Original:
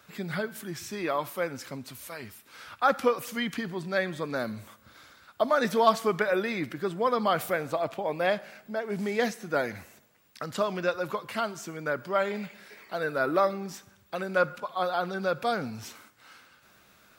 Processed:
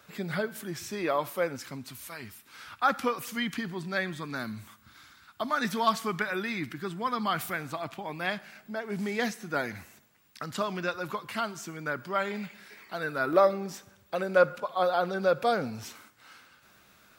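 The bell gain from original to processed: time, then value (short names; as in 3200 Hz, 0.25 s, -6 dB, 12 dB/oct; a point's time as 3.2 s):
bell 530 Hz
+2 dB
from 1.56 s -7.5 dB
from 4.13 s -14.5 dB
from 8.56 s -7 dB
from 13.33 s +4.5 dB
from 15.83 s -2 dB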